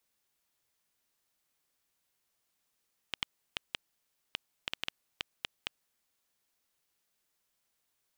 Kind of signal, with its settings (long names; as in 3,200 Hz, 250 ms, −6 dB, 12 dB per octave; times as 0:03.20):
Geiger counter clicks 4.3 per second −14.5 dBFS 2.92 s